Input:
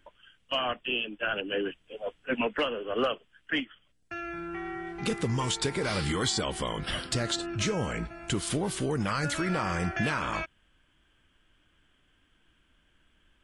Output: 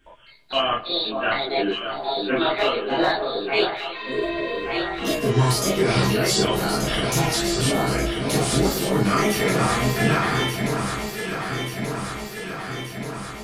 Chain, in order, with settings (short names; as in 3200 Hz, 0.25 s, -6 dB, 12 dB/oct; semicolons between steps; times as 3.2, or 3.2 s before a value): trilling pitch shifter +5.5 st, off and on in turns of 0.262 s; echo with dull and thin repeats by turns 0.591 s, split 1300 Hz, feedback 81%, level -4.5 dB; spectral repair 3.96–4.54, 700–7100 Hz after; dark delay 0.107 s, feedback 58%, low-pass 2100 Hz, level -17 dB; non-linear reverb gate 80 ms flat, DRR -7 dB